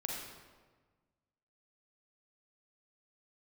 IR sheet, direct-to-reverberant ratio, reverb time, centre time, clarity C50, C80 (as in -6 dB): -1.5 dB, 1.4 s, 73 ms, 0.0 dB, 2.5 dB